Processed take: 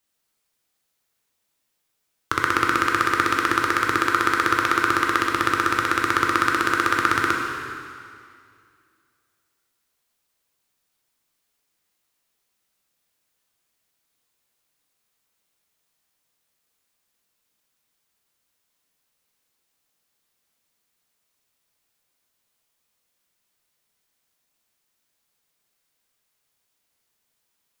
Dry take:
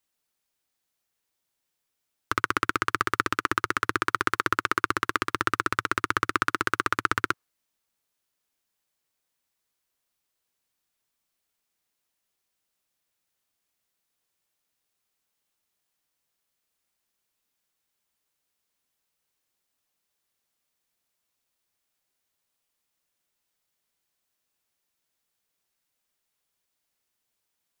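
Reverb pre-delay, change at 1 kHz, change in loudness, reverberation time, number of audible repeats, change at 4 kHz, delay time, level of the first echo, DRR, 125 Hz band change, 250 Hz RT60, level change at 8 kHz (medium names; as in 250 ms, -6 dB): 6 ms, +6.0 dB, +6.0 dB, 2.3 s, no echo, +6.0 dB, no echo, no echo, 0.0 dB, +4.0 dB, 2.4 s, +5.5 dB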